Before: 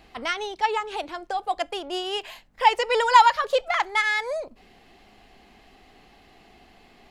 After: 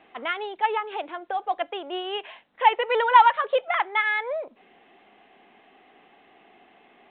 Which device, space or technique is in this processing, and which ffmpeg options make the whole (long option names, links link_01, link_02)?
telephone: -af "highpass=280,lowpass=3000" -ar 8000 -c:a pcm_alaw